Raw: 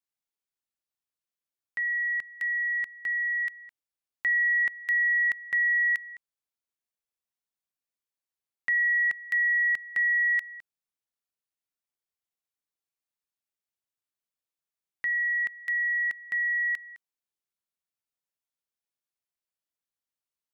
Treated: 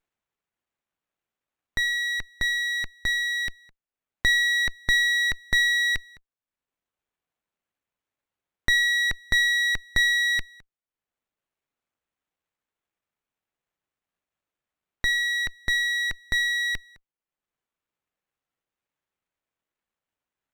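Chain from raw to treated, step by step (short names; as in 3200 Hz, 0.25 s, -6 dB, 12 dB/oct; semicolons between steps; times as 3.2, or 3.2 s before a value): reverb removal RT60 1 s; running maximum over 9 samples; gain +8.5 dB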